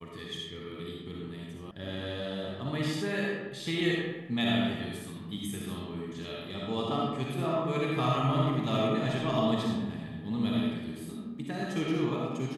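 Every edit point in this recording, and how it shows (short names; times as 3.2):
1.71 sound cut off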